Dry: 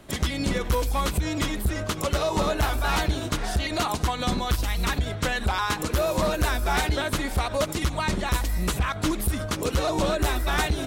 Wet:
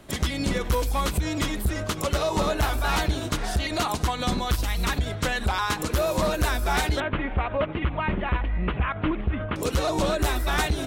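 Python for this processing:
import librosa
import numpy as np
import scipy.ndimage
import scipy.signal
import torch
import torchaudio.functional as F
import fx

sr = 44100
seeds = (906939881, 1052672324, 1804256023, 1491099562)

y = fx.steep_lowpass(x, sr, hz=3000.0, slope=48, at=(7.0, 9.56))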